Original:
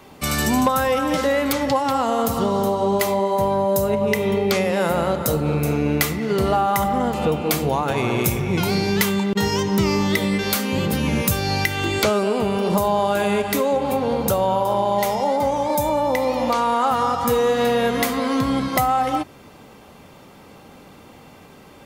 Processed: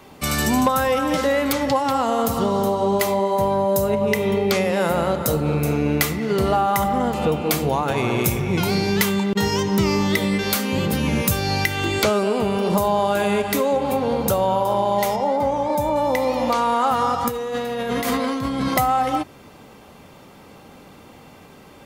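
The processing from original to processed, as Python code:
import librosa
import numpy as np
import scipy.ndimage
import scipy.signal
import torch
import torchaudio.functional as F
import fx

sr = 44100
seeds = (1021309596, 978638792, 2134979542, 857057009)

y = fx.high_shelf(x, sr, hz=3300.0, db=-9.0, at=(15.16, 15.96))
y = fx.over_compress(y, sr, threshold_db=-24.0, ratio=-1.0, at=(17.28, 18.74))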